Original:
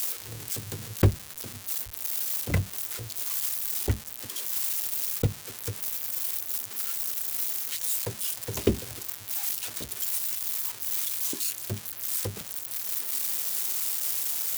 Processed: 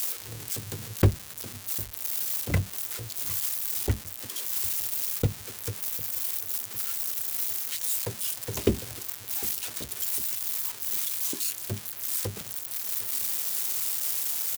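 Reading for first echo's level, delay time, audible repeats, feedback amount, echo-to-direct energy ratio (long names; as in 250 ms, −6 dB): −21.5 dB, 754 ms, 3, 53%, −20.0 dB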